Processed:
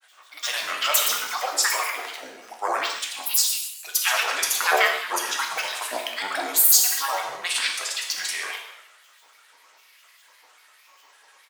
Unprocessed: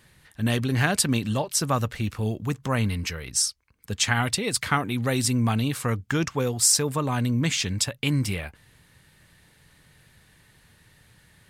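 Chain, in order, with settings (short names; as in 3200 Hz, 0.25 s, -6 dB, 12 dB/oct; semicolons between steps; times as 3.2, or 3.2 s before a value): HPF 790 Hz 24 dB/oct; feedback echo 0.117 s, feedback 42%, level -9 dB; grains, pitch spread up and down by 12 st; non-linear reverb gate 0.28 s falling, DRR 1 dB; gain +3.5 dB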